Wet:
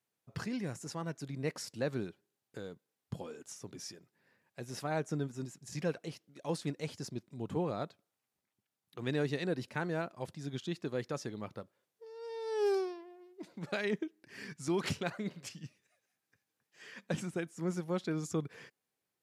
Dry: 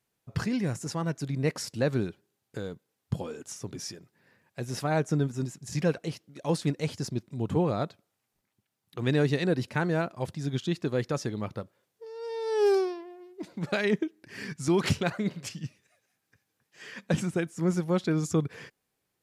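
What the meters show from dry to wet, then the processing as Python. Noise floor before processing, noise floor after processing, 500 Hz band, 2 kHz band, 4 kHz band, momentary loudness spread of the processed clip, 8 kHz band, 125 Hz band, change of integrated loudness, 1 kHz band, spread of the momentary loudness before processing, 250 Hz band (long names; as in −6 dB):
−81 dBFS, below −85 dBFS, −7.5 dB, −7.0 dB, −7.0 dB, 16 LU, −7.0 dB, −10.5 dB, −8.5 dB, −7.0 dB, 16 LU, −8.5 dB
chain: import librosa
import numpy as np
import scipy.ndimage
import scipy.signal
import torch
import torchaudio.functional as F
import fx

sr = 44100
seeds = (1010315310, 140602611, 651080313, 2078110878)

y = fx.highpass(x, sr, hz=160.0, slope=6)
y = y * librosa.db_to_amplitude(-7.0)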